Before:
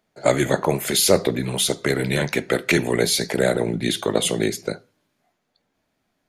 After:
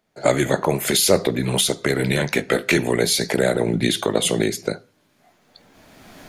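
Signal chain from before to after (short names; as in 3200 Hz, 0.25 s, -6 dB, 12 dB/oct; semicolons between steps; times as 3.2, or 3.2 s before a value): recorder AGC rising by 19 dB/s; 2.36–2.76 doubler 20 ms -8 dB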